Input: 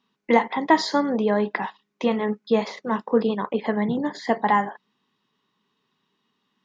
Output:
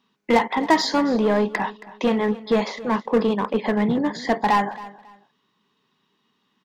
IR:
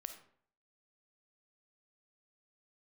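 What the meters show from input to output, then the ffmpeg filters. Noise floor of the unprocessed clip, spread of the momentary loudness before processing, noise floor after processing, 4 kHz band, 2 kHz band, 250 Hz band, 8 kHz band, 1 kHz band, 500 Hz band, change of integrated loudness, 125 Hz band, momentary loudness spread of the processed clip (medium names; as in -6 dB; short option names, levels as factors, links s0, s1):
-75 dBFS, 7 LU, -70 dBFS, +4.0 dB, +1.5 dB, +2.0 dB, no reading, +1.0 dB, +1.5 dB, +1.5 dB, +3.0 dB, 7 LU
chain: -filter_complex "[0:a]asplit=2[s0][s1];[s1]aeval=exprs='0.1*(abs(mod(val(0)/0.1+3,4)-2)-1)':c=same,volume=0.531[s2];[s0][s2]amix=inputs=2:normalize=0,aecho=1:1:273|546:0.126|0.0327"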